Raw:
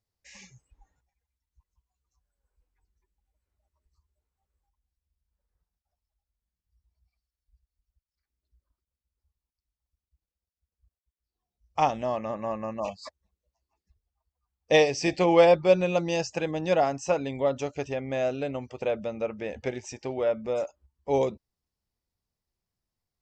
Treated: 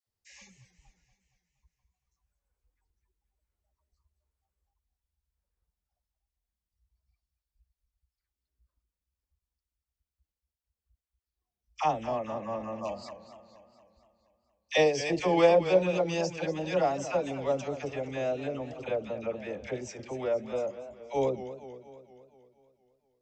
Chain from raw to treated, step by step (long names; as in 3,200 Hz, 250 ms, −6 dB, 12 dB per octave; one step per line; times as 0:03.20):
all-pass dispersion lows, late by 70 ms, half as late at 840 Hz
feedback echo with a swinging delay time 235 ms, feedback 57%, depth 141 cents, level −13 dB
level −3.5 dB